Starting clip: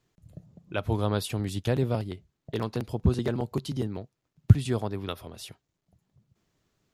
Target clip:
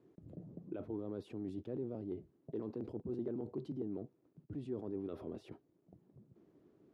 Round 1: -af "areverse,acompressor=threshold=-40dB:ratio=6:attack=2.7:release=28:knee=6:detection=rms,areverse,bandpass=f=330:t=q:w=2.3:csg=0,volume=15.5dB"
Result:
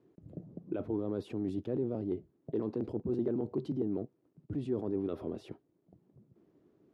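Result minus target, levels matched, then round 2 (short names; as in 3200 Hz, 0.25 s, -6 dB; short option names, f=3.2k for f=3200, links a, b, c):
compressor: peak gain reduction -7.5 dB
-af "areverse,acompressor=threshold=-49dB:ratio=6:attack=2.7:release=28:knee=6:detection=rms,areverse,bandpass=f=330:t=q:w=2.3:csg=0,volume=15.5dB"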